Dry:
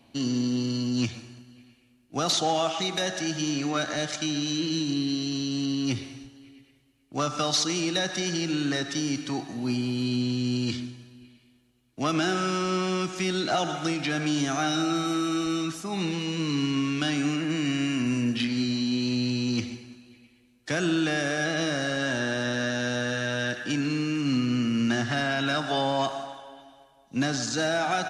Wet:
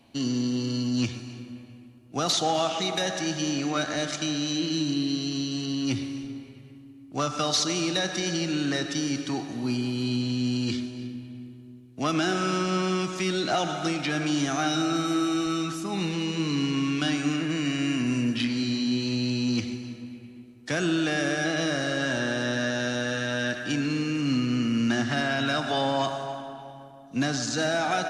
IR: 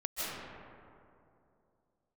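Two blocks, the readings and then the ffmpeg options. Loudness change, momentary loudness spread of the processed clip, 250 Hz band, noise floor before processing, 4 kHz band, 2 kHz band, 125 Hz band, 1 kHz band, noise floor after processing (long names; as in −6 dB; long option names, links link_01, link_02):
0.0 dB, 12 LU, +0.5 dB, −61 dBFS, 0.0 dB, 0.0 dB, 0.0 dB, +0.5 dB, −48 dBFS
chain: -filter_complex "[0:a]asplit=2[link_01][link_02];[1:a]atrim=start_sample=2205,adelay=103[link_03];[link_02][link_03]afir=irnorm=-1:irlink=0,volume=-17dB[link_04];[link_01][link_04]amix=inputs=2:normalize=0"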